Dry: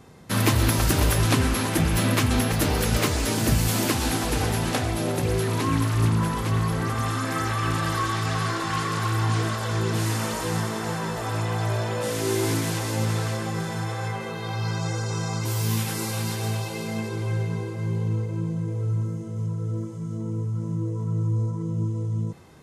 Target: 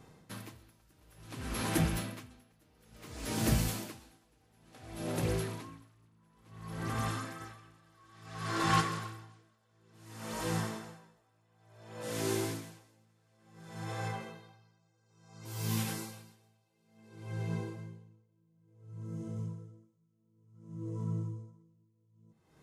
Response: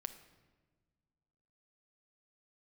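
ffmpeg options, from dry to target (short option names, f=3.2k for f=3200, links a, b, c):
-filter_complex "[0:a]asplit=3[a][b][c];[a]afade=t=out:st=7.4:d=0.02[d];[b]acontrast=64,afade=t=in:st=7.4:d=0.02,afade=t=out:st=8.8:d=0.02[e];[c]afade=t=in:st=8.8:d=0.02[f];[d][e][f]amix=inputs=3:normalize=0[g];[1:a]atrim=start_sample=2205,atrim=end_sample=3969[h];[g][h]afir=irnorm=-1:irlink=0,aeval=exprs='val(0)*pow(10,-38*(0.5-0.5*cos(2*PI*0.57*n/s))/20)':c=same,volume=-4dB"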